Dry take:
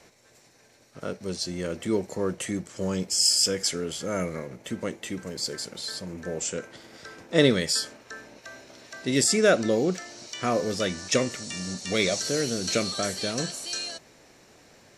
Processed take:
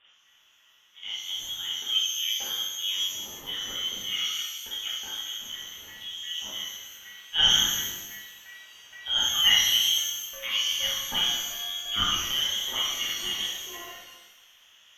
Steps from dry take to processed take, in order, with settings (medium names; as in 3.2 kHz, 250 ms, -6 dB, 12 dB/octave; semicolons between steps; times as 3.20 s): local Wiener filter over 9 samples; frequency inversion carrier 3.5 kHz; pitch-shifted reverb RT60 1.1 s, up +12 st, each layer -8 dB, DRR -6 dB; trim -8 dB